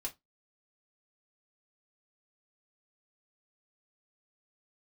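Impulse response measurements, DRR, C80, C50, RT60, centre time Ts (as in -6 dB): -1.0 dB, 30.0 dB, 19.0 dB, 0.15 s, 11 ms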